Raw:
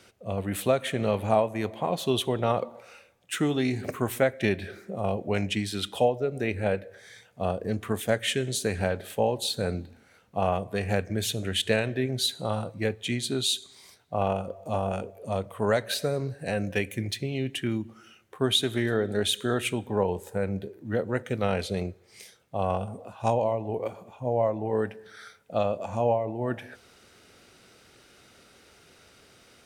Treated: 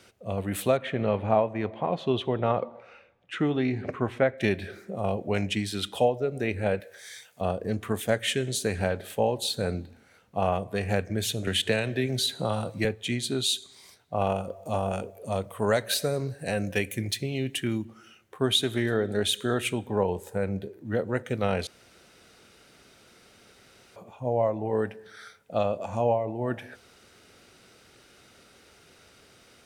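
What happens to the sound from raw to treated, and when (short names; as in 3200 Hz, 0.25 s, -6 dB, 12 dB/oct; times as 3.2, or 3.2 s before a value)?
0.77–4.38 LPF 2700 Hz
6.8–7.41 tilt +3.5 dB/oct
11.47–12.85 three-band squash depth 70%
14.2–17.85 high shelf 5600 Hz +7 dB
21.67–23.96 room tone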